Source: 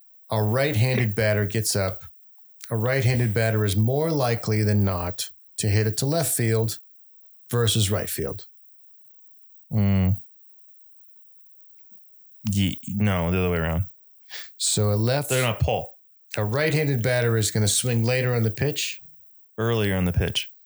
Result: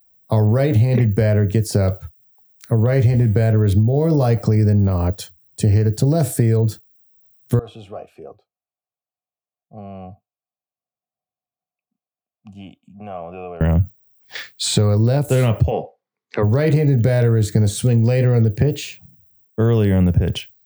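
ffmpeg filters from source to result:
-filter_complex "[0:a]asettb=1/sr,asplit=3[a][b][c];[a]atrim=end=7.594[d];[b]atrim=start=7.59:end=13.61,asetpts=PTS-STARTPTS,afade=t=in:d=0.004:c=qsin,afade=t=out:st=6.016:d=0.004:c=qsin,asplit=3[e][f][g];[e]bandpass=f=730:t=q:w=8,volume=0dB[h];[f]bandpass=f=1.09k:t=q:w=8,volume=-6dB[i];[g]bandpass=f=2.44k:t=q:w=8,volume=-9dB[j];[h][i][j]amix=inputs=3:normalize=0[k];[c]atrim=start=13.606[l];[d][k]acrossfade=d=0.004:c1=hsin:c2=qsin[m];[m][l]acrossfade=d=0.004:c1=qsin:c2=hsin,asettb=1/sr,asplit=3[n][o][p];[n]atrim=end=14.354[q];[o]atrim=start=14.35:end=14.98,asetpts=PTS-STARTPTS,afade=t=in:d=0.004:c=qsin,afade=t=out:st=0.626:d=0.004:c=qsin,equalizer=f=2.3k:t=o:w=2.4:g=12.5[r];[p]atrim=start=14.976[s];[q][r]acrossfade=d=0.004:c1=hsin:c2=qsin[t];[t][s]acrossfade=d=0.004:c1=qsin:c2=hsin,asplit=3[u][v][w];[u]afade=t=out:st=15.7:d=0.02[x];[v]highpass=f=170:w=0.5412,highpass=f=170:w=1.3066,equalizer=f=170:t=q:w=4:g=-5,equalizer=f=420:t=q:w=4:g=6,equalizer=f=600:t=q:w=4:g=-6,equalizer=f=1.1k:t=q:w=4:g=9,equalizer=f=2k:t=q:w=4:g=6,equalizer=f=2.9k:t=q:w=4:g=-4,lowpass=f=4.7k:w=0.5412,lowpass=f=4.7k:w=1.3066,afade=t=in:st=15.7:d=0.02,afade=t=out:st=16.42:d=0.02[y];[w]afade=t=in:st=16.42:d=0.02[z];[x][y][z]amix=inputs=3:normalize=0,tiltshelf=f=740:g=8.5,acompressor=threshold=-16dB:ratio=6,volume=4.5dB"

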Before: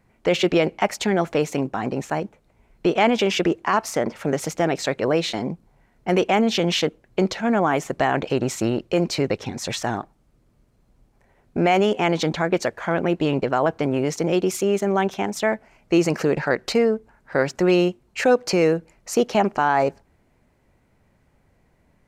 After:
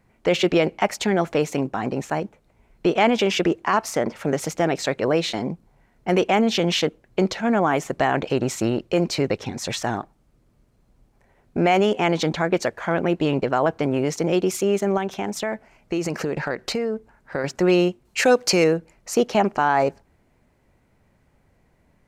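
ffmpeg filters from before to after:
-filter_complex "[0:a]asettb=1/sr,asplit=3[a][b][c];[a]atrim=end=14.974[d];[b]atrim=start=14.97:end=17.44,asetpts=PTS-STARTPTS,afade=t=in:d=0.004:c=qsin,afade=t=out:st=2.466:d=0.004:c=qsin,acompressor=threshold=-21dB:ratio=4:attack=3.2:release=140:knee=1:detection=peak[e];[c]atrim=start=17.436[f];[d][e]acrossfade=d=0.004:c1=hsin:c2=qsin[g];[g][f]acrossfade=d=0.004:c1=qsin:c2=hsin,asettb=1/sr,asplit=3[h][i][j];[h]atrim=end=18.054[k];[i]atrim=start=18.05:end=18.64,asetpts=PTS-STARTPTS,afade=t=in:d=0.004:c=qsin,afade=t=out:st=0.586:d=0.004:c=qsin,highshelf=f=2.5k:g=8.5[l];[j]atrim=start=18.636[m];[k][l]acrossfade=d=0.004:c1=hsin:c2=qsin[n];[n][m]acrossfade=d=0.004:c1=qsin:c2=hsin"

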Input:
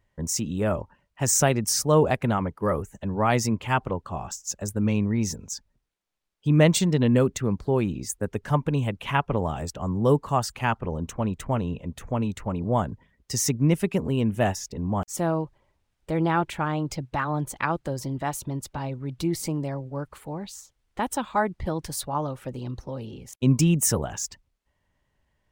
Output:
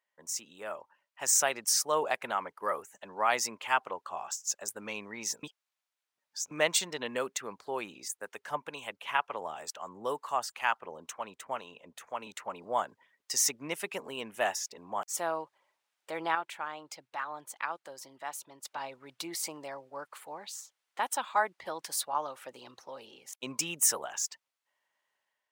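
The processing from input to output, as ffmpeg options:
-filter_complex "[0:a]asettb=1/sr,asplit=3[a][b][c];[a]atrim=end=8.084[d];[b]atrim=start=8.08:end=12.27,asetpts=PTS-STARTPTS,afade=t=in:d=0.004:c=qsin,afade=t=out:st=4.186:d=0.004:c=qsin,acrossover=split=660[e][f];[e]aeval=exprs='val(0)*(1-0.5/2+0.5/2*cos(2*PI*2.1*n/s))':c=same[g];[f]aeval=exprs='val(0)*(1-0.5/2-0.5/2*cos(2*PI*2.1*n/s))':c=same[h];[g][h]amix=inputs=2:normalize=0[i];[c]atrim=start=12.266[j];[d][i]acrossfade=d=0.004:c1=hsin:c2=qsin[k];[k][j]acrossfade=d=0.004:c1=qsin:c2=hsin,asplit=5[l][m][n][o][p];[l]atrim=end=5.432[q];[m]atrim=start=5.428:end=6.512,asetpts=PTS-STARTPTS,areverse[r];[n]atrim=start=6.508:end=16.352[s];[o]atrim=start=16.348:end=18.652,asetpts=PTS-STARTPTS,volume=-6.5dB[t];[p]atrim=start=18.648[u];[q][r]acrossfade=d=0.004:c1=hsin:c2=hsin[v];[v][s]acrossfade=d=0.004:c1=hsin:c2=hsin[w];[w][t]acrossfade=d=0.004:c1=hsin:c2=hsin[x];[x][u]acrossfade=d=0.004:c1=hsin:c2=hsin,highpass=800,dynaudnorm=f=680:g=3:m=7.5dB,volume=-8dB"

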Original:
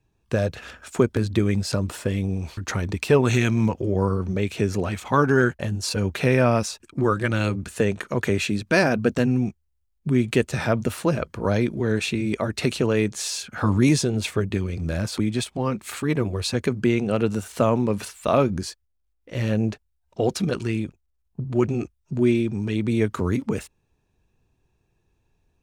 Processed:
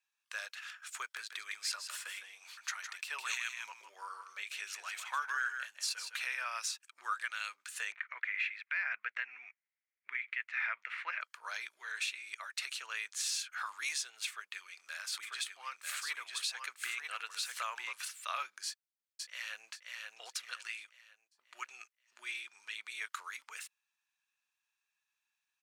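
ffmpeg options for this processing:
-filter_complex "[0:a]asplit=3[a][b][c];[a]afade=t=out:st=1.17:d=0.02[d];[b]aecho=1:1:158:0.376,afade=t=in:st=1.17:d=0.02,afade=t=out:st=6.2:d=0.02[e];[c]afade=t=in:st=6.2:d=0.02[f];[d][e][f]amix=inputs=3:normalize=0,asettb=1/sr,asplit=3[g][h][i];[g]atrim=end=7.924[j];[h]atrim=start=7.92:end=11.21,asetpts=PTS-STARTPTS,afade=t=in:d=0.004:c=qsin,afade=t=out:st=3.286:d=0.004:c=qsin,lowpass=f=2.1k:t=q:w=5.4[k];[i]atrim=start=11.206[l];[j][k]acrossfade=d=0.004:c1=hsin:c2=qsin[m];[m][l]acrossfade=d=0.004:c1=qsin:c2=hsin,asplit=3[n][o][p];[n]afade=t=out:st=15.22:d=0.02[q];[o]aecho=1:1:944:0.631,afade=t=in:st=15.22:d=0.02,afade=t=out:st=17.92:d=0.02[r];[p]afade=t=in:st=17.92:d=0.02[s];[q][r][s]amix=inputs=3:normalize=0,asplit=2[t][u];[u]afade=t=in:st=18.66:d=0.01,afade=t=out:st=19.68:d=0.01,aecho=0:1:530|1060|1590|2120|2650:0.707946|0.283178|0.113271|0.0453085|0.0181234[v];[t][v]amix=inputs=2:normalize=0,highpass=f=1.3k:w=0.5412,highpass=f=1.3k:w=1.3066,alimiter=limit=-19.5dB:level=0:latency=1:release=327,volume=-5dB"

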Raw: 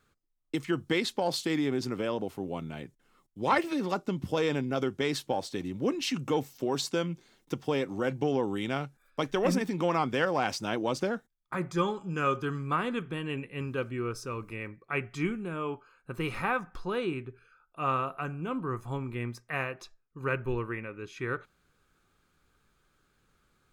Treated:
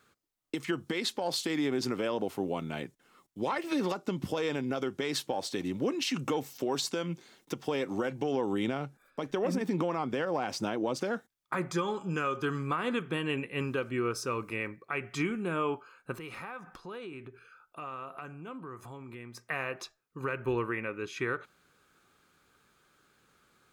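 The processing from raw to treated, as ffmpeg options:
-filter_complex "[0:a]asettb=1/sr,asplit=3[a][b][c];[a]atrim=end=8.534[d];[b]atrim=start=8.53:end=10.96,asetpts=PTS-STARTPTS,afade=t=in:d=0.004:c=qsin,afade=t=out:st=2.426:d=0.004:c=qsin,tiltshelf=f=970:g=4[e];[c]atrim=start=10.956[f];[d][e]acrossfade=d=0.004:c1=hsin:c2=qsin[g];[g][f]acrossfade=d=0.004:c1=qsin:c2=hsin,asettb=1/sr,asplit=3[h][i][j];[h]atrim=end=16.144[k];[i]atrim=start=16.14:end=19.4,asetpts=PTS-STARTPTS,afade=t=in:d=0.004:c=qsin,afade=t=out:st=3.256:d=0.004:c=qsin,acompressor=threshold=-44dB:ratio=6:attack=3.2:release=140:knee=1:detection=peak[l];[j]atrim=start=19.396[m];[k][l]acrossfade=d=0.004:c1=hsin:c2=qsin[n];[n][m]acrossfade=d=0.004:c1=qsin:c2=hsin,highpass=f=230:p=1,acompressor=threshold=-30dB:ratio=6,alimiter=level_in=2dB:limit=-24dB:level=0:latency=1:release=156,volume=-2dB,volume=5.5dB"

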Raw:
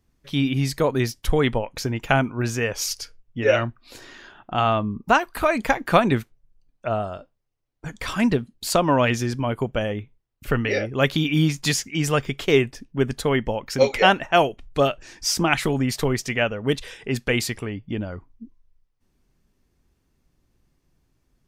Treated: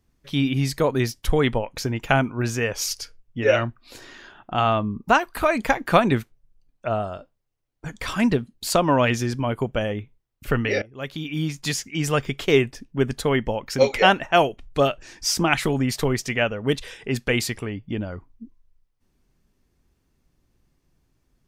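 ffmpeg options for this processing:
-filter_complex "[0:a]asplit=2[a][b];[a]atrim=end=10.82,asetpts=PTS-STARTPTS,afade=t=out:st=10.816:d=0.004:c=hsin:silence=0.105925[c];[b]atrim=start=10.82,asetpts=PTS-STARTPTS,afade=t=in:d=1.45:silence=0.105925[d];[c][d]concat=n=2:v=0:a=1"

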